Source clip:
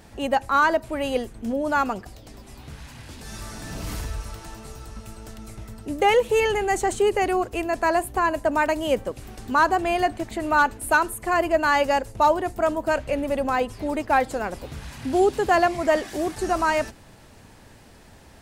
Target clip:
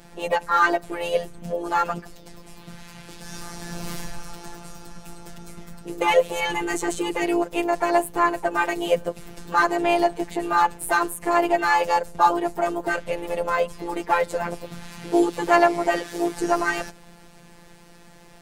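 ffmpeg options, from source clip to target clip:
-filter_complex "[0:a]afftfilt=real='hypot(re,im)*cos(PI*b)':imag='0':win_size=1024:overlap=0.75,asplit=4[a][b][c][d];[b]asetrate=37084,aresample=44100,atempo=1.18921,volume=-17dB[e];[c]asetrate=52444,aresample=44100,atempo=0.840896,volume=-16dB[f];[d]asetrate=58866,aresample=44100,atempo=0.749154,volume=-16dB[g];[a][e][f][g]amix=inputs=4:normalize=0,volume=3.5dB"

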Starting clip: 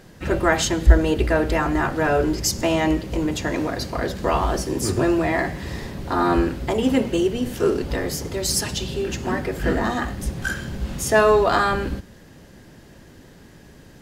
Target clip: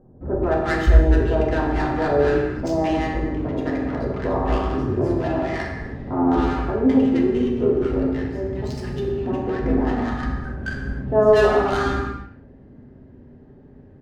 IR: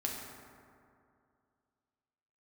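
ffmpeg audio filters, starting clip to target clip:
-filter_complex "[0:a]adynamicsmooth=sensitivity=1:basefreq=910,acrossover=split=1100[a][b];[b]adelay=210[c];[a][c]amix=inputs=2:normalize=0[d];[1:a]atrim=start_sample=2205,afade=t=out:st=0.37:d=0.01,atrim=end_sample=16758[e];[d][e]afir=irnorm=-1:irlink=0,volume=-2.5dB"

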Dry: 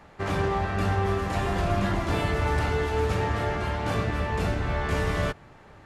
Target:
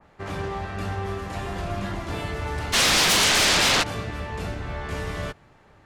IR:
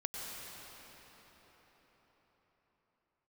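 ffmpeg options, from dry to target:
-filter_complex "[0:a]asplit=3[a][b][c];[a]afade=t=out:st=2.72:d=0.02[d];[b]aeval=exprs='0.188*sin(PI/2*10*val(0)/0.188)':c=same,afade=t=in:st=2.72:d=0.02,afade=t=out:st=3.82:d=0.02[e];[c]afade=t=in:st=3.82:d=0.02[f];[d][e][f]amix=inputs=3:normalize=0,adynamicequalizer=threshold=0.02:dfrequency=2400:dqfactor=0.7:tfrequency=2400:tqfactor=0.7:attack=5:release=100:ratio=0.375:range=3:mode=boostabove:tftype=highshelf,volume=-4.5dB"

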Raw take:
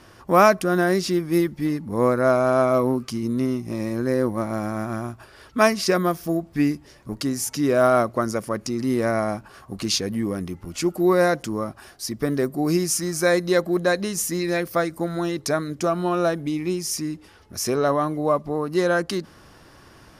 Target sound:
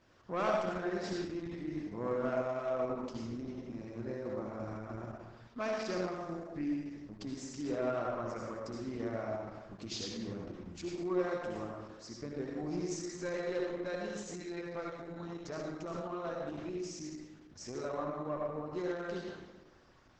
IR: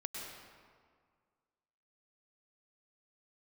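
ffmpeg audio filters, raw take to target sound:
-filter_complex "[0:a]asetnsamples=n=441:p=0,asendcmd='1.43 highshelf g -4.5;3.42 highshelf g -11',highshelf=f=8.7k:g=-10.5,aeval=exprs='(tanh(3.55*val(0)+0.15)-tanh(0.15))/3.55':c=same[a];[1:a]atrim=start_sample=2205,asetrate=70560,aresample=44100[b];[a][b]afir=irnorm=-1:irlink=0,volume=-9dB" -ar 48000 -c:a libopus -b:a 10k

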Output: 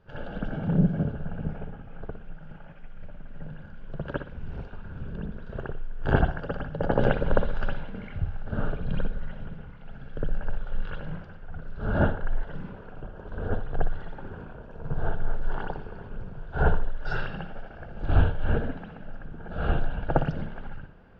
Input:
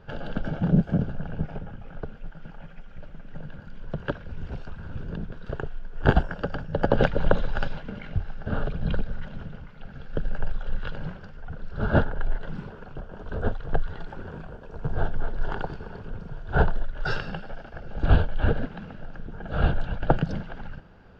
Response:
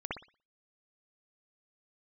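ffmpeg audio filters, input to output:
-filter_complex "[1:a]atrim=start_sample=2205[a];[0:a][a]afir=irnorm=-1:irlink=0,volume=-5.5dB"

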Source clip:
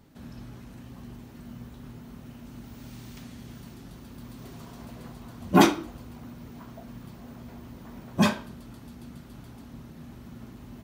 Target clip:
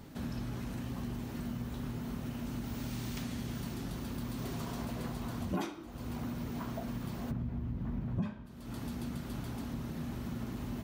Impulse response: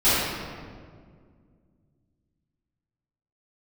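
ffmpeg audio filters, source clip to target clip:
-filter_complex "[0:a]asplit=3[a][b][c];[a]afade=t=out:st=7.3:d=0.02[d];[b]bass=f=250:g=15,treble=f=4k:g=-14,afade=t=in:st=7.3:d=0.02,afade=t=out:st=8.45:d=0.02[e];[c]afade=t=in:st=8.45:d=0.02[f];[d][e][f]amix=inputs=3:normalize=0,acompressor=threshold=-40dB:ratio=10,volume=6.5dB"

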